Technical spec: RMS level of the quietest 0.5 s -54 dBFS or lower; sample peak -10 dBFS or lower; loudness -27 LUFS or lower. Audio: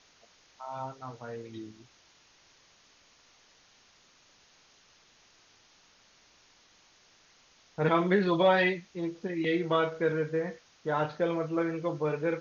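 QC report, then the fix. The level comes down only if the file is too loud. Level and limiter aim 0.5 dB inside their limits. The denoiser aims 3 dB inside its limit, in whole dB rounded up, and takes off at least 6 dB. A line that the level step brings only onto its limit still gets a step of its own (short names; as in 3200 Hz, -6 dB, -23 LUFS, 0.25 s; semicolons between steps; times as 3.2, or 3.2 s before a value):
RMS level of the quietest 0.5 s -62 dBFS: OK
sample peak -12.5 dBFS: OK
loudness -29.5 LUFS: OK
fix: none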